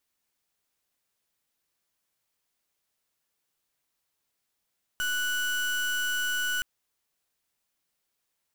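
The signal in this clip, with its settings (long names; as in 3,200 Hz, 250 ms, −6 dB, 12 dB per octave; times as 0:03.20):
pulse wave 1,480 Hz, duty 32% −28.5 dBFS 1.62 s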